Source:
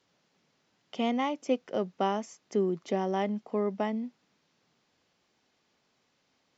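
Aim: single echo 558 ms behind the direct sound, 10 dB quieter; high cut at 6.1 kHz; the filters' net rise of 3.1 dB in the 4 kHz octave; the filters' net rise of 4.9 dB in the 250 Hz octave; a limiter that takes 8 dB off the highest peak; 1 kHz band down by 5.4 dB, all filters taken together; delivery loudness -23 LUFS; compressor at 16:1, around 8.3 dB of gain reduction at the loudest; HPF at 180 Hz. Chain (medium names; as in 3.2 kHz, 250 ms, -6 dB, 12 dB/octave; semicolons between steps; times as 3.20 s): high-pass 180 Hz; low-pass 6.1 kHz; peaking EQ 250 Hz +8 dB; peaking EQ 1 kHz -8.5 dB; peaking EQ 4 kHz +6 dB; compression 16:1, threshold -27 dBFS; peak limiter -25.5 dBFS; delay 558 ms -10 dB; trim +12.5 dB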